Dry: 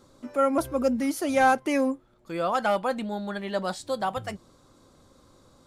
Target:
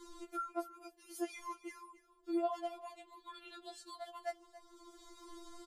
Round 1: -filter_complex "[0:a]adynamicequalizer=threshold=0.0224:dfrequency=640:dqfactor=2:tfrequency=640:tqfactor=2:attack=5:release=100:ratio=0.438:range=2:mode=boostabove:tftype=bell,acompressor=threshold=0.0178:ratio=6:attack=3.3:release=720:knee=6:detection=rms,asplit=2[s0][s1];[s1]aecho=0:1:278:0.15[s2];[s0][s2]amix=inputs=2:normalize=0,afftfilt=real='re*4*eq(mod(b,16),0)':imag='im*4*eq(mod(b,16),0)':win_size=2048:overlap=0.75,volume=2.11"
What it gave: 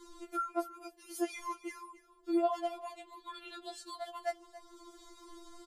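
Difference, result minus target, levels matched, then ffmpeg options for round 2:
compression: peak gain reduction -5 dB
-filter_complex "[0:a]adynamicequalizer=threshold=0.0224:dfrequency=640:dqfactor=2:tfrequency=640:tqfactor=2:attack=5:release=100:ratio=0.438:range=2:mode=boostabove:tftype=bell,acompressor=threshold=0.00891:ratio=6:attack=3.3:release=720:knee=6:detection=rms,asplit=2[s0][s1];[s1]aecho=0:1:278:0.15[s2];[s0][s2]amix=inputs=2:normalize=0,afftfilt=real='re*4*eq(mod(b,16),0)':imag='im*4*eq(mod(b,16),0)':win_size=2048:overlap=0.75,volume=2.11"

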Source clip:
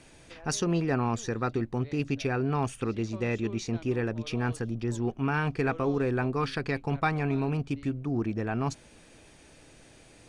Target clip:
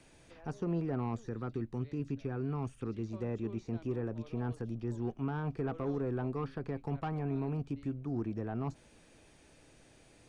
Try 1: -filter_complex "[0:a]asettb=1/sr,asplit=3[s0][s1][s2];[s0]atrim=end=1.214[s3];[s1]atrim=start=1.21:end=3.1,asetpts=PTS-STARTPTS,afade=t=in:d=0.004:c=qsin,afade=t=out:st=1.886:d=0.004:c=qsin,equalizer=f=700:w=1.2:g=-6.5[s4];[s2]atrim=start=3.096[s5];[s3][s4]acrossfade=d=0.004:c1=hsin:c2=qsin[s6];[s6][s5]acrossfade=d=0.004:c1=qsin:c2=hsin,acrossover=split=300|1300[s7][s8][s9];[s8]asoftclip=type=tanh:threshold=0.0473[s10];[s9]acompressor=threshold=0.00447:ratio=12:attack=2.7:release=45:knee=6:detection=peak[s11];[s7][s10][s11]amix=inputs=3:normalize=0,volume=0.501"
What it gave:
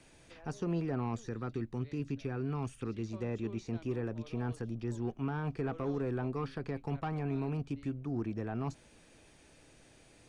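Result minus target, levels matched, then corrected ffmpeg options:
compression: peak gain reduction -8 dB
-filter_complex "[0:a]asettb=1/sr,asplit=3[s0][s1][s2];[s0]atrim=end=1.214[s3];[s1]atrim=start=1.21:end=3.1,asetpts=PTS-STARTPTS,afade=t=in:d=0.004:c=qsin,afade=t=out:st=1.886:d=0.004:c=qsin,equalizer=f=700:w=1.2:g=-6.5[s4];[s2]atrim=start=3.096[s5];[s3][s4]acrossfade=d=0.004:c1=hsin:c2=qsin[s6];[s6][s5]acrossfade=d=0.004:c1=qsin:c2=hsin,acrossover=split=300|1300[s7][s8][s9];[s8]asoftclip=type=tanh:threshold=0.0473[s10];[s9]acompressor=threshold=0.00168:ratio=12:attack=2.7:release=45:knee=6:detection=peak[s11];[s7][s10][s11]amix=inputs=3:normalize=0,volume=0.501"

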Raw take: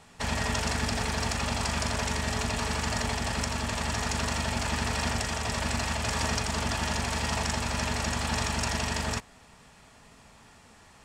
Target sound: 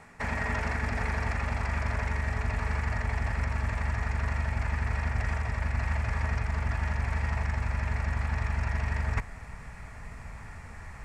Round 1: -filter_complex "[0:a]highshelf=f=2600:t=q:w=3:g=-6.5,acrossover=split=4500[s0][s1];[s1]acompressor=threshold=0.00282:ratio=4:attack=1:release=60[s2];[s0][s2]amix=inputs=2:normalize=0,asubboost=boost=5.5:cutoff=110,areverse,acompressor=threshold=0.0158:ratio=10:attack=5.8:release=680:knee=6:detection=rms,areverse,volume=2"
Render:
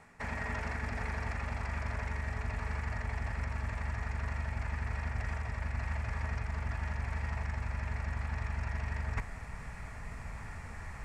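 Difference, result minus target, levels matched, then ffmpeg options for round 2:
compression: peak gain reduction +6.5 dB
-filter_complex "[0:a]highshelf=f=2600:t=q:w=3:g=-6.5,acrossover=split=4500[s0][s1];[s1]acompressor=threshold=0.00282:ratio=4:attack=1:release=60[s2];[s0][s2]amix=inputs=2:normalize=0,asubboost=boost=5.5:cutoff=110,areverse,acompressor=threshold=0.0355:ratio=10:attack=5.8:release=680:knee=6:detection=rms,areverse,volume=2"

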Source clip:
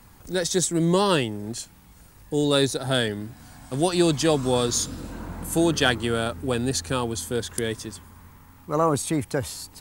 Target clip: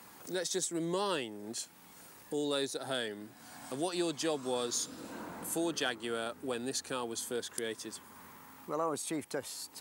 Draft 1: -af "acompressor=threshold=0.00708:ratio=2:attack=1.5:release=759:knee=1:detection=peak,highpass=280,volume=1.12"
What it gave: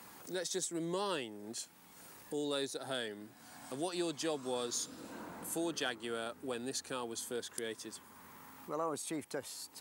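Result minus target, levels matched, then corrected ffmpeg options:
compression: peak gain reduction +3.5 dB
-af "acompressor=threshold=0.015:ratio=2:attack=1.5:release=759:knee=1:detection=peak,highpass=280,volume=1.12"

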